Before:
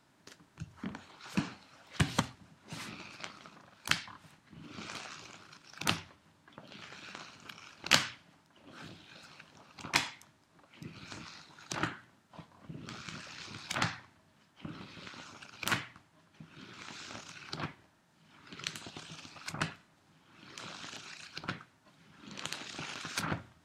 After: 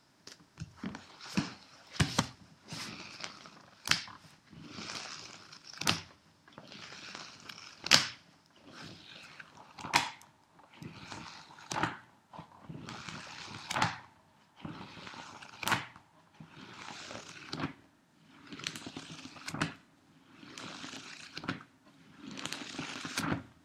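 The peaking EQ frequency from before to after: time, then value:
peaking EQ +9 dB 0.44 oct
8.98 s 5.2 kHz
9.61 s 880 Hz
16.87 s 880 Hz
17.49 s 270 Hz

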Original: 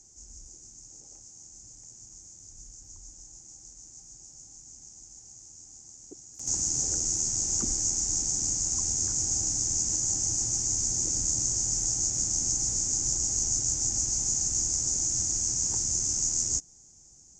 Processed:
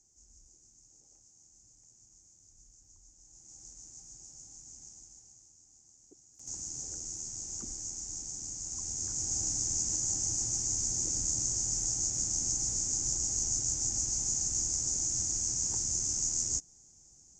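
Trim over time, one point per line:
3.17 s -12 dB
3.62 s -2 dB
4.88 s -2 dB
5.58 s -12 dB
8.52 s -12 dB
9.44 s -4 dB

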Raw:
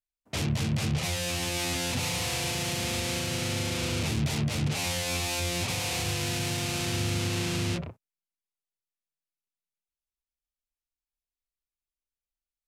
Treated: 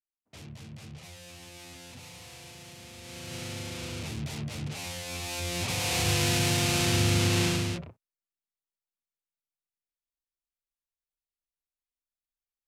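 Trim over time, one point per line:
2.96 s -17 dB
3.36 s -7.5 dB
5.08 s -7.5 dB
6.13 s +4.5 dB
7.45 s +4.5 dB
7.86 s -6.5 dB

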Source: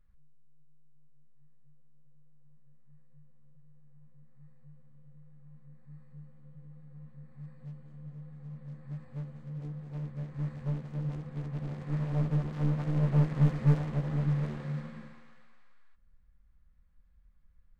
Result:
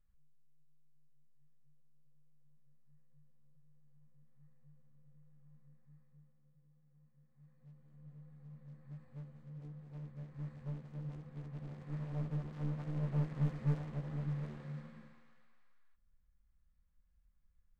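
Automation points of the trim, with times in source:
5.61 s -9 dB
6.61 s -19 dB
7.30 s -19 dB
8.11 s -9.5 dB

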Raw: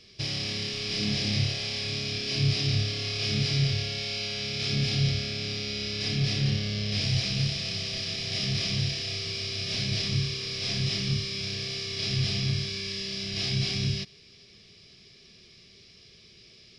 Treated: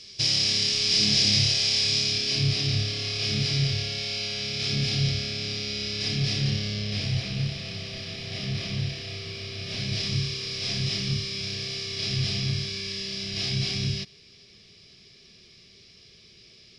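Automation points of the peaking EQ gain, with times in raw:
peaking EQ 6.8 kHz 1.9 oct
1.98 s +13 dB
2.50 s +3 dB
6.66 s +3 dB
7.24 s -7.5 dB
9.59 s -7.5 dB
10.07 s +1.5 dB

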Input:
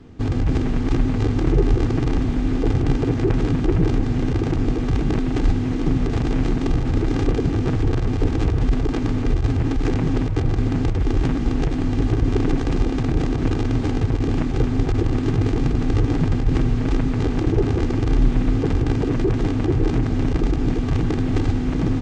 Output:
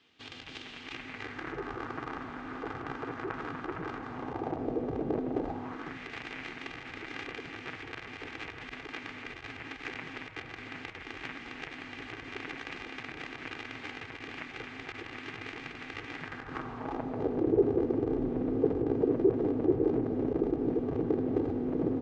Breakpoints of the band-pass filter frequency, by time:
band-pass filter, Q 2.1
0.72 s 3.2 kHz
1.72 s 1.3 kHz
4.01 s 1.3 kHz
4.77 s 540 Hz
5.39 s 540 Hz
6.02 s 2.2 kHz
16.14 s 2.2 kHz
17.42 s 450 Hz

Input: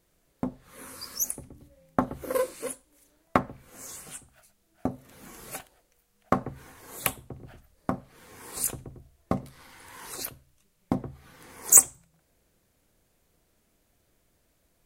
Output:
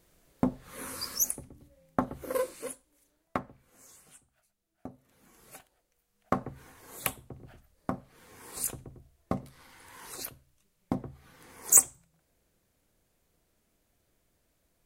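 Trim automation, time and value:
1.02 s +4 dB
1.52 s -3.5 dB
2.54 s -3.5 dB
3.96 s -14 dB
5.28 s -14 dB
6.36 s -4 dB

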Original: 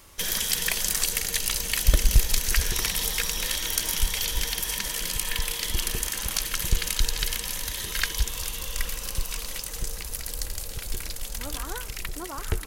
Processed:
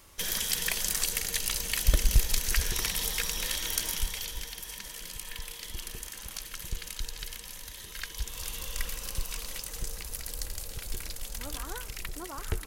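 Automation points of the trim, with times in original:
3.81 s -4 dB
4.50 s -12 dB
8.06 s -12 dB
8.52 s -4.5 dB

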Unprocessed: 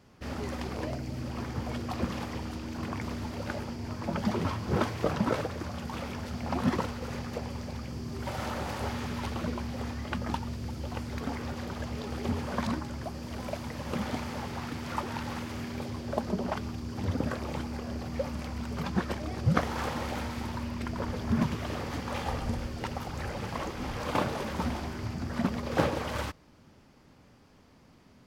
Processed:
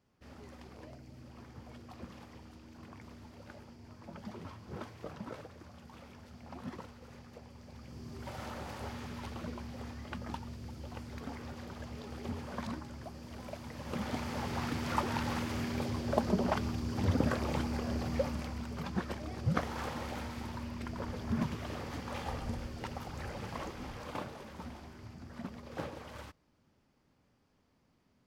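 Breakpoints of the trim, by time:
7.55 s -16 dB
8.05 s -8.5 dB
13.58 s -8.5 dB
14.61 s +1 dB
18.12 s +1 dB
18.74 s -6 dB
23.66 s -6 dB
24.38 s -14 dB

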